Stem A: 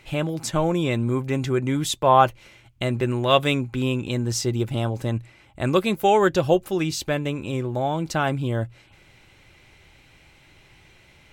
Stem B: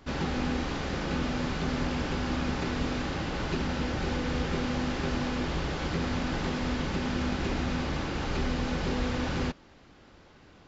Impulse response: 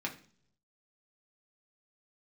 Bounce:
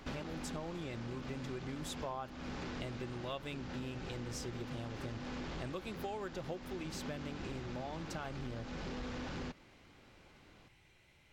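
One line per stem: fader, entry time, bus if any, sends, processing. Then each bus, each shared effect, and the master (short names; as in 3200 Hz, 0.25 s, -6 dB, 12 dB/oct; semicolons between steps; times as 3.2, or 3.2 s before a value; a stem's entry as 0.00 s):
-13.0 dB, 0.00 s, no send, dry
+2.0 dB, 0.00 s, no send, bell 71 Hz -3.5 dB; soft clip -26.5 dBFS, distortion -15 dB; auto duck -9 dB, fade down 0.25 s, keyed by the first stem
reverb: off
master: compressor 6:1, threshold -39 dBFS, peak gain reduction 15.5 dB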